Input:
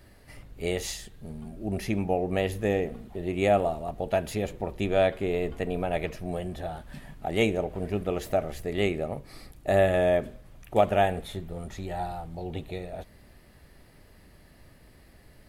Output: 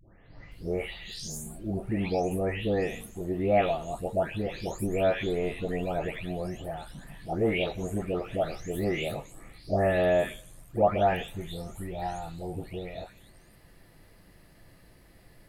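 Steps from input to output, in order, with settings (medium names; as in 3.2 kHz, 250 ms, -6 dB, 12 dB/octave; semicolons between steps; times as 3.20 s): delay that grows with frequency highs late, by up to 516 ms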